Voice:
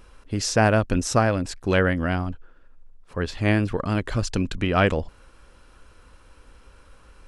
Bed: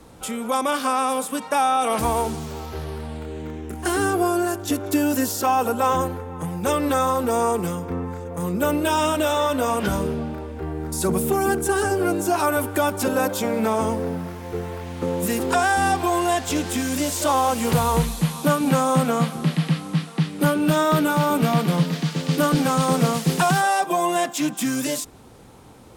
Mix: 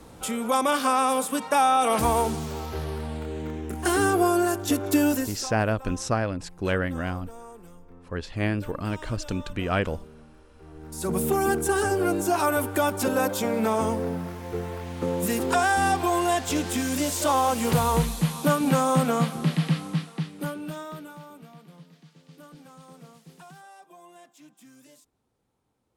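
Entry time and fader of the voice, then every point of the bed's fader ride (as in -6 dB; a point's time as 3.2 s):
4.95 s, -5.5 dB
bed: 5.09 s -0.5 dB
5.59 s -23.5 dB
10.49 s -23.5 dB
11.21 s -2.5 dB
19.84 s -2.5 dB
21.52 s -29 dB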